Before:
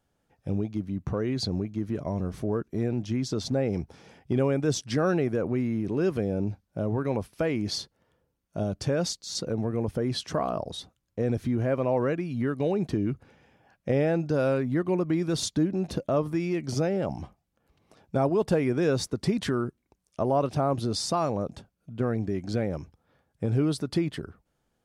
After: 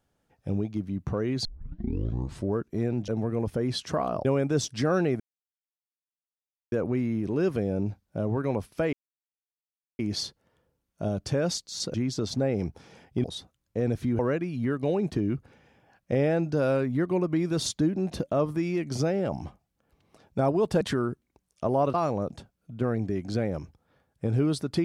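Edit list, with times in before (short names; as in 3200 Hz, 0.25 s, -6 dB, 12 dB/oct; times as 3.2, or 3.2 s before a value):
1.45 tape start 1.09 s
3.08–4.38 swap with 9.49–10.66
5.33 insert silence 1.52 s
7.54 insert silence 1.06 s
11.61–11.96 cut
18.58–19.37 cut
20.5–21.13 cut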